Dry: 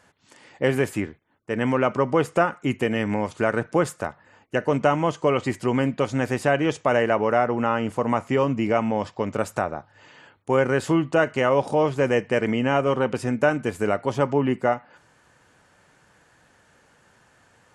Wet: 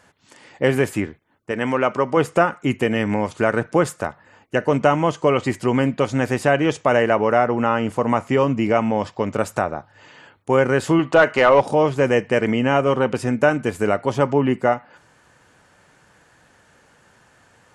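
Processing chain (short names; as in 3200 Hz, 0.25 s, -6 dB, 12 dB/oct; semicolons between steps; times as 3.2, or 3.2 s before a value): 1.51–2.17 low shelf 240 Hz -8.5 dB; 10.99–11.61 overdrive pedal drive 13 dB, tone 2900 Hz, clips at -5.5 dBFS; gain +3.5 dB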